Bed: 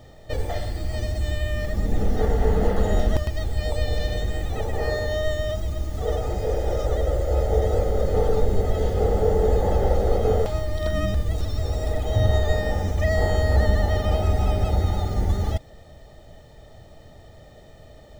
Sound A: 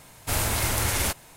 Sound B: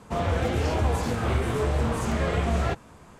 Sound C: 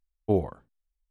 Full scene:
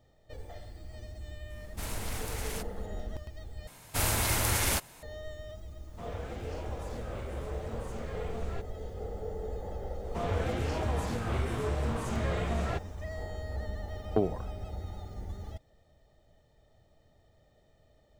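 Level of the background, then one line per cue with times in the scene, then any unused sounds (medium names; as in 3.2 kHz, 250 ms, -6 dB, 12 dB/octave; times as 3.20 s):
bed -18 dB
1.50 s: add A -13.5 dB + loudspeaker Doppler distortion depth 0.51 ms
3.67 s: replace with A -3 dB
5.87 s: add B -16 dB
10.04 s: add B -7 dB
13.88 s: add C -3 dB + three bands compressed up and down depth 100%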